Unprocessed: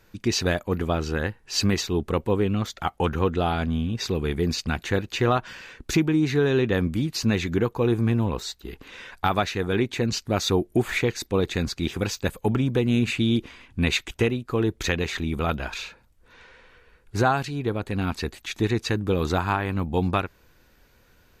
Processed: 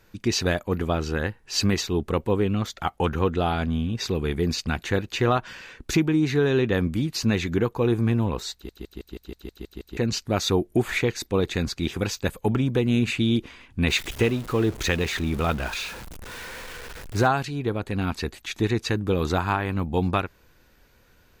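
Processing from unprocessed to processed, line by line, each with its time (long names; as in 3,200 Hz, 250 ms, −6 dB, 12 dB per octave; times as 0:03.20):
0:08.53: stutter in place 0.16 s, 9 plays
0:13.88–0:17.27: converter with a step at zero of −33.5 dBFS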